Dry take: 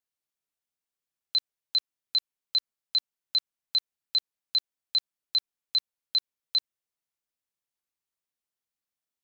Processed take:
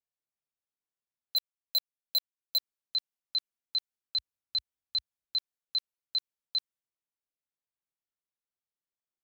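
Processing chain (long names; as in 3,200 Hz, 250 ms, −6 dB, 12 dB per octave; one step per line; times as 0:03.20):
0:01.36–0:02.58: leveller curve on the samples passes 5
0:04.18–0:05.38: parametric band 63 Hz +12.5 dB 1.7 octaves
one half of a high-frequency compander decoder only
level −5 dB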